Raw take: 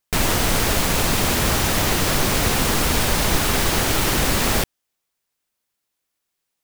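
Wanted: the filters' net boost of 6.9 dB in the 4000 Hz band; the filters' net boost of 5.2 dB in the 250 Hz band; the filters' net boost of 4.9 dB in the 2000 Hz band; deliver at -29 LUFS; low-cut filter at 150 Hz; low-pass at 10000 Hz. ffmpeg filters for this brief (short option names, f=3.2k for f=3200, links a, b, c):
-af "highpass=150,lowpass=10k,equalizer=f=250:t=o:g=7.5,equalizer=f=2k:t=o:g=4,equalizer=f=4k:t=o:g=7.5,volume=-13dB"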